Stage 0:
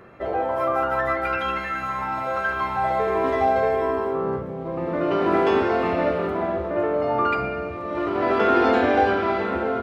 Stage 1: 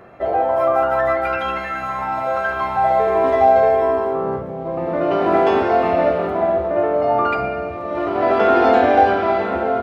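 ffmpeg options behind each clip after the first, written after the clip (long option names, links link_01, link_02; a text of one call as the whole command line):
ffmpeg -i in.wav -af "equalizer=frequency=700:width_type=o:width=0.45:gain=9,volume=1.5dB" out.wav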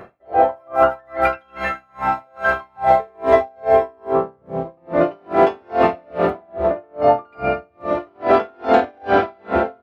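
ffmpeg -i in.wav -af "alimiter=limit=-9dB:level=0:latency=1:release=28,aeval=exprs='val(0)*pow(10,-39*(0.5-0.5*cos(2*PI*2.4*n/s))/20)':channel_layout=same,volume=6.5dB" out.wav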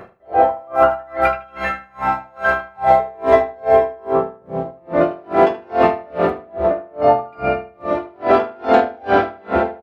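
ffmpeg -i in.wav -filter_complex "[0:a]asplit=2[link_01][link_02];[link_02]adelay=77,lowpass=frequency=3600:poles=1,volume=-13.5dB,asplit=2[link_03][link_04];[link_04]adelay=77,lowpass=frequency=3600:poles=1,volume=0.24,asplit=2[link_05][link_06];[link_06]adelay=77,lowpass=frequency=3600:poles=1,volume=0.24[link_07];[link_01][link_03][link_05][link_07]amix=inputs=4:normalize=0,volume=1dB" out.wav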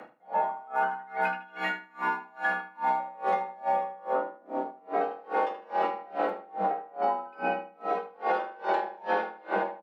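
ffmpeg -i in.wav -af "acompressor=threshold=-15dB:ratio=10,afreqshift=120,volume=-8dB" out.wav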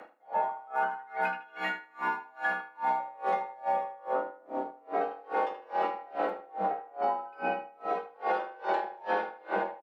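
ffmpeg -i in.wav -filter_complex "[0:a]asplit=2[link_01][link_02];[link_02]adelay=90,lowpass=frequency=1200:poles=1,volume=-22.5dB,asplit=2[link_03][link_04];[link_04]adelay=90,lowpass=frequency=1200:poles=1,volume=0.5,asplit=2[link_05][link_06];[link_06]adelay=90,lowpass=frequency=1200:poles=1,volume=0.5[link_07];[link_01][link_03][link_05][link_07]amix=inputs=4:normalize=0,acrossover=split=270[link_08][link_09];[link_08]aeval=exprs='sgn(val(0))*max(abs(val(0))-0.001,0)':channel_layout=same[link_10];[link_10][link_09]amix=inputs=2:normalize=0,volume=-2dB" out.wav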